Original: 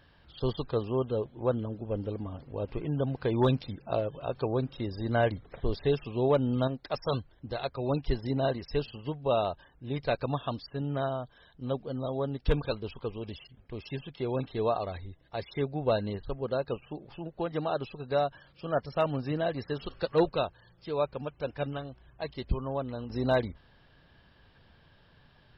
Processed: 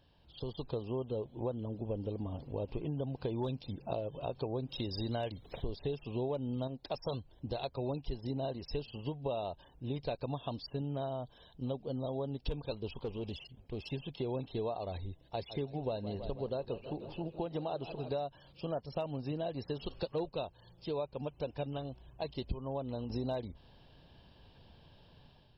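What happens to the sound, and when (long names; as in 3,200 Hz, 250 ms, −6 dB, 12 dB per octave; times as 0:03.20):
0:04.69–0:05.62: high-shelf EQ 2,200 Hz +12 dB
0:13.03–0:13.93: tube saturation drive 31 dB, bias 0.3
0:15.22–0:18.16: feedback echo with a swinging delay time 161 ms, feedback 68%, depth 105 cents, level −16 dB
whole clip: downward compressor, threshold −35 dBFS; flat-topped bell 1,600 Hz −10 dB 1.1 octaves; automatic gain control gain up to 7.5 dB; level −6 dB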